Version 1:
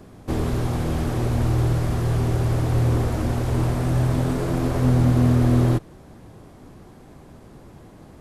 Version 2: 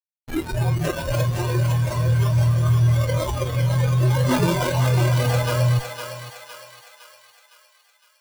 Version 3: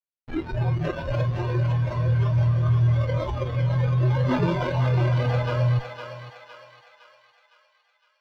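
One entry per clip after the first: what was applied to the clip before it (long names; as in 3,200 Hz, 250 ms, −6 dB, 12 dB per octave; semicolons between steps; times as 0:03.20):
comparator with hysteresis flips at −28 dBFS; noise reduction from a noise print of the clip's start 21 dB; feedback echo with a high-pass in the loop 510 ms, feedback 53%, high-pass 750 Hz, level −5 dB; level +8 dB
high-frequency loss of the air 250 metres; level −2.5 dB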